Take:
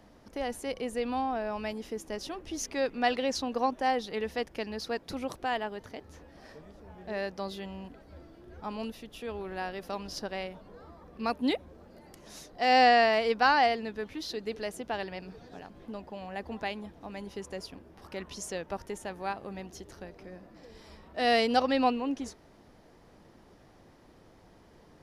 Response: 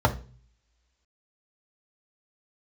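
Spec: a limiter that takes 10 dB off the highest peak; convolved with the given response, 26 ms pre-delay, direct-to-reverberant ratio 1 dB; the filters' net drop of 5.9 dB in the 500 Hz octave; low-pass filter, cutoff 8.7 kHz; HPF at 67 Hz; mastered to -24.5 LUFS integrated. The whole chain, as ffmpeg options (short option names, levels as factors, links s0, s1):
-filter_complex "[0:a]highpass=67,lowpass=8700,equalizer=f=500:t=o:g=-7.5,alimiter=limit=0.075:level=0:latency=1,asplit=2[s0][s1];[1:a]atrim=start_sample=2205,adelay=26[s2];[s1][s2]afir=irnorm=-1:irlink=0,volume=0.141[s3];[s0][s3]amix=inputs=2:normalize=0,volume=2.82"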